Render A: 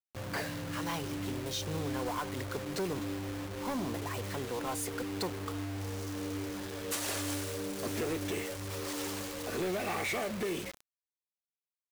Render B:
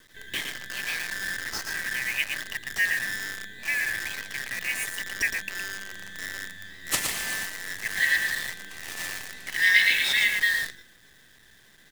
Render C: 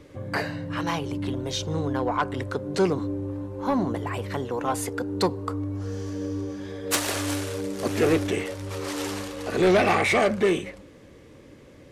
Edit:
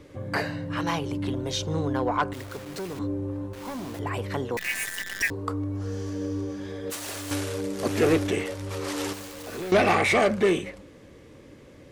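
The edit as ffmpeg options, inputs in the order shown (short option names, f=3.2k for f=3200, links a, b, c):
-filter_complex "[0:a]asplit=4[a][b][c][d];[2:a]asplit=6[e][f][g][h][i][j];[e]atrim=end=2.332[k];[a]atrim=start=2.328:end=2.992[l];[f]atrim=start=2.988:end=3.532[m];[b]atrim=start=3.528:end=3.992[n];[g]atrim=start=3.988:end=4.572[o];[1:a]atrim=start=4.568:end=5.302[p];[h]atrim=start=5.298:end=6.902[q];[c]atrim=start=6.898:end=7.312[r];[i]atrim=start=7.308:end=9.132[s];[d]atrim=start=9.128:end=9.722[t];[j]atrim=start=9.718[u];[k][l]acrossfade=d=0.004:c1=hsin:c2=hsin[v];[v][m]acrossfade=d=0.004:c1=hsin:c2=hsin[w];[w][n]acrossfade=d=0.004:c1=hsin:c2=hsin[x];[x][o]acrossfade=d=0.004:c1=hsin:c2=hsin[y];[y][p]acrossfade=d=0.004:c1=hsin:c2=hsin[z];[z][q]acrossfade=d=0.004:c1=hsin:c2=hsin[aa];[aa][r]acrossfade=d=0.004:c1=hsin:c2=hsin[ab];[ab][s]acrossfade=d=0.004:c1=hsin:c2=hsin[ac];[ac][t]acrossfade=d=0.004:c1=hsin:c2=hsin[ad];[ad][u]acrossfade=d=0.004:c1=hsin:c2=hsin"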